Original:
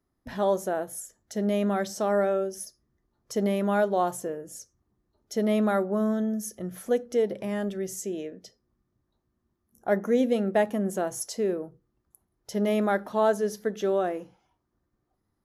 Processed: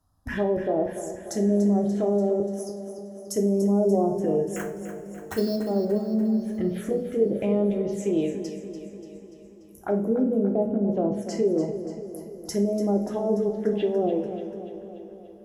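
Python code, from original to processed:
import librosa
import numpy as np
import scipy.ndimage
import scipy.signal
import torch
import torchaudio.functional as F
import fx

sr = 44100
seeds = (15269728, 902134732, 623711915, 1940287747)

p1 = fx.differentiator(x, sr, at=(2.4, 3.36))
p2 = fx.env_lowpass_down(p1, sr, base_hz=440.0, full_db=-22.5)
p3 = fx.over_compress(p2, sr, threshold_db=-32.0, ratio=-1.0)
p4 = p2 + (p3 * 10.0 ** (1.0 / 20.0))
p5 = fx.sample_hold(p4, sr, seeds[0], rate_hz=4800.0, jitter_pct=0, at=(4.56, 5.56))
p6 = fx.env_phaser(p5, sr, low_hz=370.0, high_hz=1700.0, full_db=-21.5)
p7 = fx.echo_feedback(p6, sr, ms=291, feedback_pct=58, wet_db=-11.0)
y = fx.rev_double_slope(p7, sr, seeds[1], early_s=0.36, late_s=5.0, knee_db=-22, drr_db=3.0)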